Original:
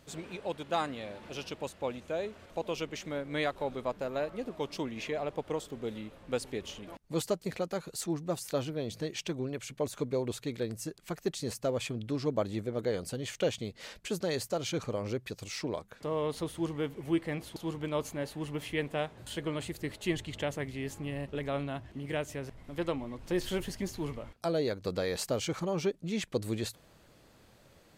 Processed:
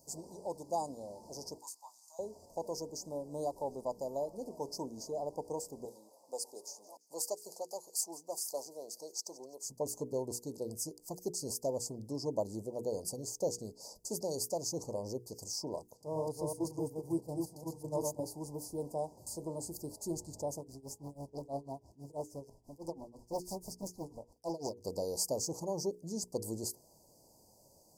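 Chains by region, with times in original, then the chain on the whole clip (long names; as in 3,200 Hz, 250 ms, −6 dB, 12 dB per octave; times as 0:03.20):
0:01.58–0:02.19: inverse Chebyshev high-pass filter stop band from 530 Hz + double-tracking delay 20 ms −6 dB
0:05.85–0:09.65: high-pass filter 600 Hz + delay with a high-pass on its return 169 ms, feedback 42%, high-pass 2,500 Hz, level −19 dB
0:15.97–0:18.26: delay that plays each chunk backwards 186 ms, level −2.5 dB + noise gate −35 dBFS, range −9 dB + parametric band 120 Hz +14.5 dB 0.29 octaves
0:20.57–0:24.85: amplitude tremolo 6.1 Hz, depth 92% + highs frequency-modulated by the lows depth 0.89 ms
whole clip: Chebyshev band-stop filter 960–4,800 Hz, order 5; spectral tilt +2 dB per octave; mains-hum notches 60/120/180/240/300/360/420/480 Hz; level −1 dB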